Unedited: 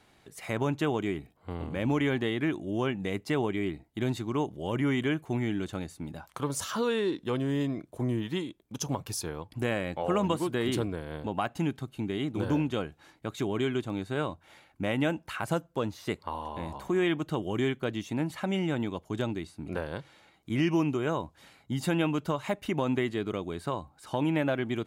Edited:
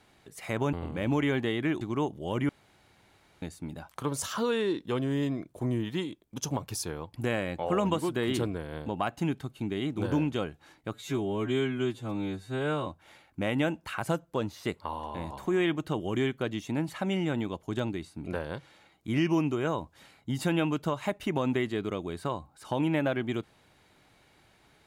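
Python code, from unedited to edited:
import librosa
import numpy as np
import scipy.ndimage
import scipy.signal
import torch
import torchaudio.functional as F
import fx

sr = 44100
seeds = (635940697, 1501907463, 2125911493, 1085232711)

y = fx.edit(x, sr, fx.cut(start_s=0.73, length_s=0.78),
    fx.cut(start_s=2.59, length_s=1.6),
    fx.room_tone_fill(start_s=4.87, length_s=0.93),
    fx.stretch_span(start_s=13.32, length_s=0.96, factor=2.0), tone=tone)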